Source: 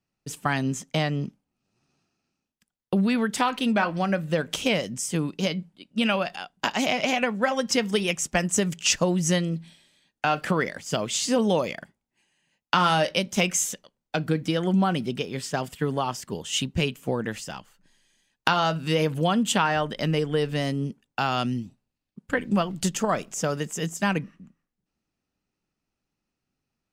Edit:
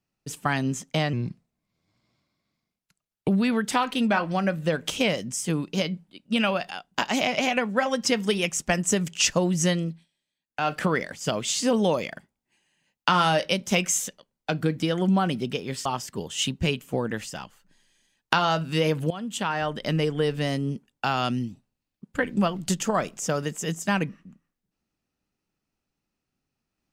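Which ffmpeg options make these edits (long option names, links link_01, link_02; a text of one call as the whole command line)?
ffmpeg -i in.wav -filter_complex "[0:a]asplit=7[link_01][link_02][link_03][link_04][link_05][link_06][link_07];[link_01]atrim=end=1.134[link_08];[link_02]atrim=start=1.13:end=2.94,asetpts=PTS-STARTPTS,asetrate=37044,aresample=44100[link_09];[link_03]atrim=start=2.936:end=9.72,asetpts=PTS-STARTPTS,afade=type=out:start_time=6.544:duration=0.24:silence=0.0944061[link_10];[link_04]atrim=start=9.72:end=10.12,asetpts=PTS-STARTPTS,volume=-20.5dB[link_11];[link_05]atrim=start=10.12:end=15.512,asetpts=PTS-STARTPTS,afade=type=in:duration=0.24:silence=0.0944061[link_12];[link_06]atrim=start=15.998:end=19.25,asetpts=PTS-STARTPTS,afade=type=out:start_time=3.248:duration=0.004:curve=hsin:silence=0.158489[link_13];[link_07]atrim=start=19.25,asetpts=PTS-STARTPTS,afade=type=in:duration=0.77:silence=0.158489[link_14];[link_08][link_09]acrossfade=duration=0.004:curve1=hsin:curve2=hsin[link_15];[link_10][link_11][link_12]concat=n=3:v=0:a=1[link_16];[link_15][link_16]acrossfade=duration=0.004:curve1=hsin:curve2=hsin[link_17];[link_13][link_14]concat=n=2:v=0:a=1[link_18];[link_17][link_18]acrossfade=duration=0.004:curve1=hsin:curve2=hsin" out.wav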